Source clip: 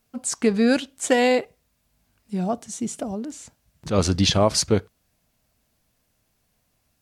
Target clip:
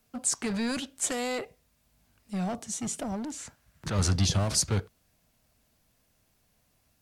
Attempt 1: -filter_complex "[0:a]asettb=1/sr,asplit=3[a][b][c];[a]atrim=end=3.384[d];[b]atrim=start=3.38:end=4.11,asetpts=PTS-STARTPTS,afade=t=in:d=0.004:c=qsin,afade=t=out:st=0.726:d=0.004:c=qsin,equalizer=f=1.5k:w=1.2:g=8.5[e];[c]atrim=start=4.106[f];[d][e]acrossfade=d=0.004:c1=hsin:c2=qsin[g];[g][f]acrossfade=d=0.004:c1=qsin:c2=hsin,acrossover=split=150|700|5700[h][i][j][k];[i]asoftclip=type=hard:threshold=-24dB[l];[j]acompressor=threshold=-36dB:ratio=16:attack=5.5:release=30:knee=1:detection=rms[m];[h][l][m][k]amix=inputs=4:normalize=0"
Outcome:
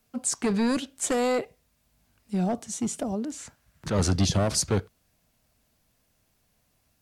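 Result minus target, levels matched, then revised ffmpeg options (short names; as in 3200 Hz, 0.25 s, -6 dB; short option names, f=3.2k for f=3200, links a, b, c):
hard clip: distortion -5 dB
-filter_complex "[0:a]asettb=1/sr,asplit=3[a][b][c];[a]atrim=end=3.384[d];[b]atrim=start=3.38:end=4.11,asetpts=PTS-STARTPTS,afade=t=in:d=0.004:c=qsin,afade=t=out:st=0.726:d=0.004:c=qsin,equalizer=f=1.5k:w=1.2:g=8.5[e];[c]atrim=start=4.106[f];[d][e]acrossfade=d=0.004:c1=hsin:c2=qsin[g];[g][f]acrossfade=d=0.004:c1=qsin:c2=hsin,acrossover=split=150|700|5700[h][i][j][k];[i]asoftclip=type=hard:threshold=-35dB[l];[j]acompressor=threshold=-36dB:ratio=16:attack=5.5:release=30:knee=1:detection=rms[m];[h][l][m][k]amix=inputs=4:normalize=0"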